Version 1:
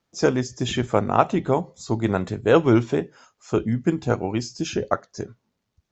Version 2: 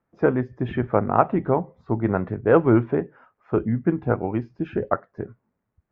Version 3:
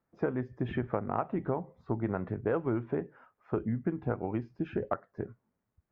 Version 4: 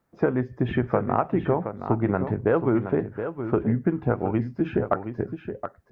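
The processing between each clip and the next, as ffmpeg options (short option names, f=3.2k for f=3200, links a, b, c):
-af "lowpass=f=1.9k:w=0.5412,lowpass=f=1.9k:w=1.3066"
-af "acompressor=threshold=-22dB:ratio=6,volume=-5dB"
-af "aecho=1:1:721:0.355,volume=8.5dB"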